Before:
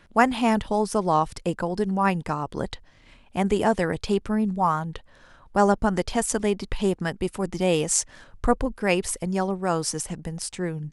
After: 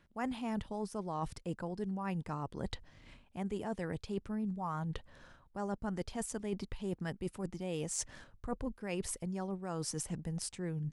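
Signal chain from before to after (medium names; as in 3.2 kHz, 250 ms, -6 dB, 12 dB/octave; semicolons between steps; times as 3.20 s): de-esser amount 30%; peaking EQ 120 Hz +5.5 dB 2.8 oct; reverse; compression 6:1, threshold -30 dBFS, peak gain reduction 18 dB; reverse; trim -5.5 dB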